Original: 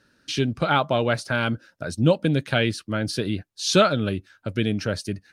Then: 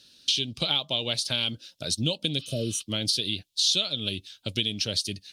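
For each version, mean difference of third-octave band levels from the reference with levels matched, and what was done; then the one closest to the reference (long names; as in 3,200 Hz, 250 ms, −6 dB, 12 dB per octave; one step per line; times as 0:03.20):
7.5 dB: healed spectral selection 0:02.41–0:02.78, 670–5,700 Hz after
high shelf with overshoot 2,300 Hz +14 dB, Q 3
downward compressor 4 to 1, threshold −20 dBFS, peak gain reduction 16 dB
level −4 dB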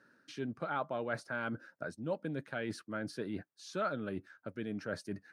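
4.0 dB: reversed playback
downward compressor 6 to 1, threshold −30 dBFS, peak gain reduction 17 dB
reversed playback
high-pass filter 180 Hz 12 dB per octave
high shelf with overshoot 2,200 Hz −8 dB, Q 1.5
level −3.5 dB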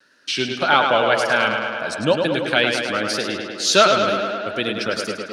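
10.0 dB: meter weighting curve A
tape wow and flutter 94 cents
tape delay 105 ms, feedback 80%, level −4.5 dB, low-pass 5,100 Hz
level +5 dB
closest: second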